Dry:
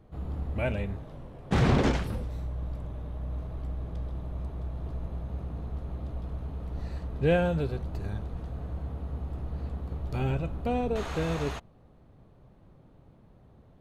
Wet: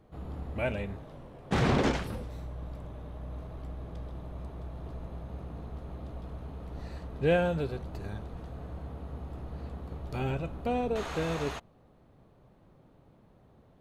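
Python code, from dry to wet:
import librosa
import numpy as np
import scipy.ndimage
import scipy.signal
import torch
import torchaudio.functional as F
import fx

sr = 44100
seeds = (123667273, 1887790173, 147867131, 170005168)

y = fx.low_shelf(x, sr, hz=150.0, db=-7.5)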